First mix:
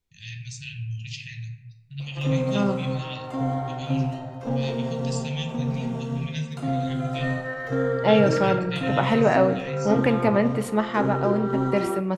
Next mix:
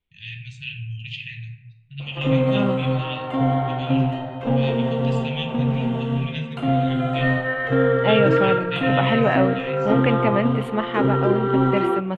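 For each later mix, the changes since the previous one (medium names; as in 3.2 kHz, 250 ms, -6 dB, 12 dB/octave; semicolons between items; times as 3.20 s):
second voice: send -9.5 dB; background +6.0 dB; master: add resonant high shelf 4.1 kHz -10.5 dB, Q 3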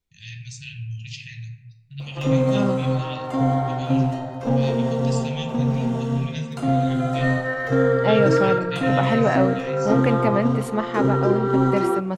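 master: add resonant high shelf 4.1 kHz +10.5 dB, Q 3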